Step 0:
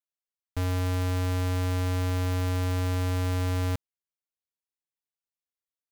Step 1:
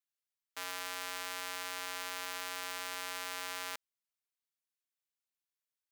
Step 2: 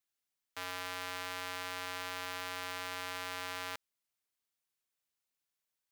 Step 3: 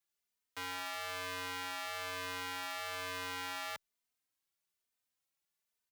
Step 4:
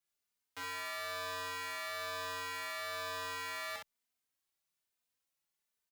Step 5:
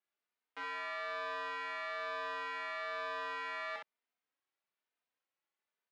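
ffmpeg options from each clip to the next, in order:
-af "highpass=1.2k"
-af "asoftclip=type=tanh:threshold=-29.5dB,volume=4dB"
-filter_complex "[0:a]asplit=2[a][b];[b]adelay=3.1,afreqshift=1.1[c];[a][c]amix=inputs=2:normalize=1,volume=3dB"
-af "aecho=1:1:25|38|64:0.447|0.376|0.668,volume=-2.5dB"
-af "highpass=290,lowpass=2.5k,volume=2dB"

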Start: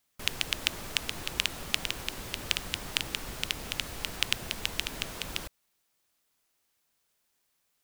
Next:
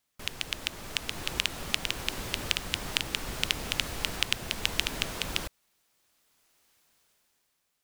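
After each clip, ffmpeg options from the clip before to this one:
-af "highshelf=f=11k:g=-4,alimiter=limit=-6.5dB:level=0:latency=1:release=412,dynaudnorm=f=280:g=7:m=13dB,volume=-1.5dB"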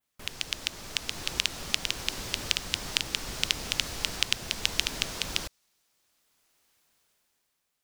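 -af "adynamicequalizer=threshold=0.00316:dfrequency=5400:dqfactor=0.99:tfrequency=5400:tqfactor=0.99:attack=5:release=100:ratio=0.375:range=3.5:mode=boostabove:tftype=bell,volume=-2dB"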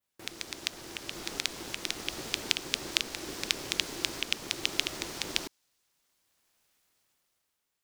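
-af "aeval=exprs='val(0)*sin(2*PI*340*n/s)':c=same"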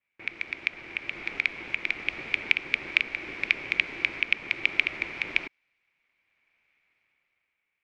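-af "lowpass=f=2.3k:t=q:w=9.2,volume=-2.5dB"

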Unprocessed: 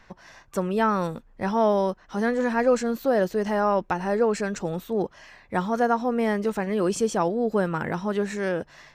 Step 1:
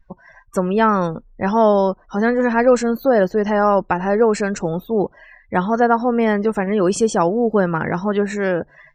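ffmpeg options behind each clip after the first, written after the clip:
-af "afftdn=nr=29:nf=-45,volume=7dB"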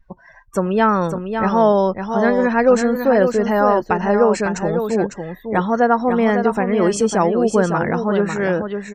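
-af "aecho=1:1:552:0.447"

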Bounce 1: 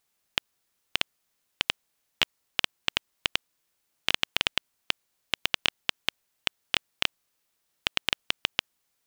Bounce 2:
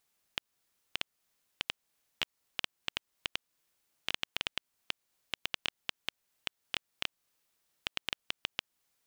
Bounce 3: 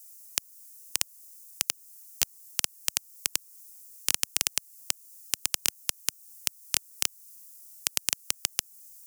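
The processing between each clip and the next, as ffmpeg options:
-af "alimiter=limit=-10.5dB:level=0:latency=1:release=241,volume=-1.5dB"
-filter_complex "[0:a]acrossover=split=130|630|4800[a][b][c][d];[b]acrusher=bits=2:mode=log:mix=0:aa=0.000001[e];[a][e][c][d]amix=inputs=4:normalize=0,aexciter=amount=15.8:drive=4.9:freq=5.2k,volume=2dB"

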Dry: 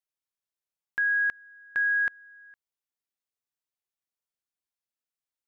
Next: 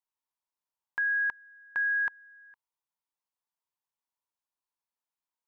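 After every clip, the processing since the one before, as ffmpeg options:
-af "equalizer=f=950:t=o:w=0.56:g=15,volume=-5dB"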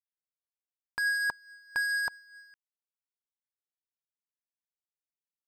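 -filter_complex "[0:a]acrossover=split=970[a][b];[b]asoftclip=type=hard:threshold=-37dB[c];[a][c]amix=inputs=2:normalize=0,aphaser=in_gain=1:out_gain=1:delay=1.7:decay=0.21:speed=0.77:type=triangular,aeval=exprs='sgn(val(0))*max(abs(val(0))-0.00126,0)':c=same,volume=7dB"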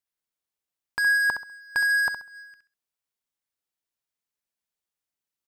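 -af "aecho=1:1:66|132|198:0.355|0.0887|0.0222,volume=5.5dB"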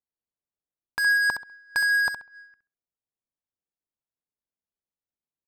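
-af "adynamicsmooth=sensitivity=8:basefreq=850"

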